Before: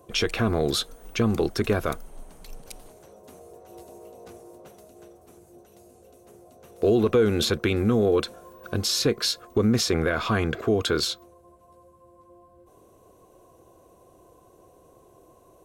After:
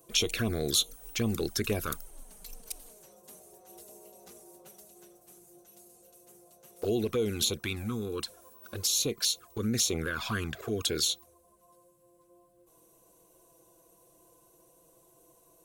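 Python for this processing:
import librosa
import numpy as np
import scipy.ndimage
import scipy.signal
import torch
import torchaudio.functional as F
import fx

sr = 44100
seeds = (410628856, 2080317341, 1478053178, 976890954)

y = fx.rider(x, sr, range_db=10, speed_s=2.0)
y = scipy.signal.lfilter([1.0, -0.8], [1.0], y)
y = fx.env_flanger(y, sr, rest_ms=6.5, full_db=-29.0)
y = F.gain(torch.from_numpy(y), 6.0).numpy()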